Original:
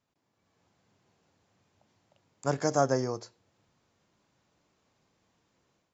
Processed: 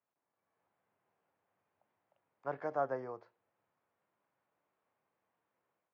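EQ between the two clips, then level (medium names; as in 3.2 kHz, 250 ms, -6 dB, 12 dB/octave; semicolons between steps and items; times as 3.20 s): high-pass 95 Hz; distance through air 250 m; three-band isolator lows -13 dB, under 460 Hz, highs -21 dB, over 2.7 kHz; -5.5 dB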